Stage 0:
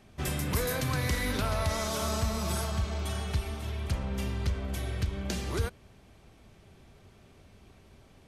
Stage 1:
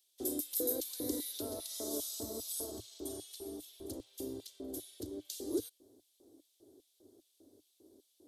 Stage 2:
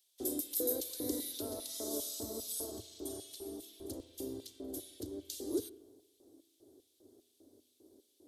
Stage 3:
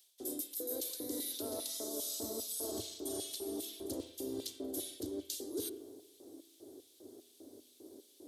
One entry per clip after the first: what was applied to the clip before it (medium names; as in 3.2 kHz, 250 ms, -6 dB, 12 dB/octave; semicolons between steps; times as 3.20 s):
LFO high-pass square 2.5 Hz 260–2600 Hz; FFT filter 110 Hz 0 dB, 170 Hz -29 dB, 300 Hz +5 dB, 560 Hz -3 dB, 1.2 kHz -21 dB, 2.5 kHz -28 dB, 3.6 kHz -6 dB, 5.8 kHz -3 dB, 13 kHz +9 dB; trim -4.5 dB
reverberation RT60 1.1 s, pre-delay 36 ms, DRR 16.5 dB
high-pass 180 Hz 6 dB/octave; reverse; compression 12:1, threshold -46 dBFS, peak gain reduction 17.5 dB; reverse; trim +9.5 dB